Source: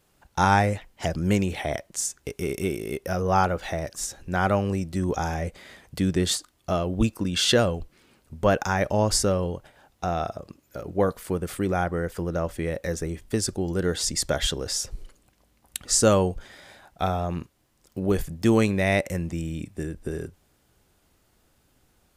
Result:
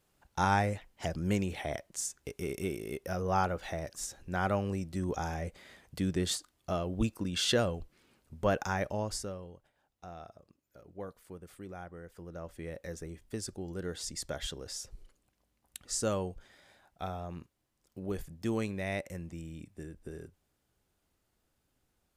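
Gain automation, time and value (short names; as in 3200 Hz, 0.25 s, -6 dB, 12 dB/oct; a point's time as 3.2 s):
8.75 s -8 dB
9.46 s -20 dB
12.06 s -20 dB
12.69 s -13 dB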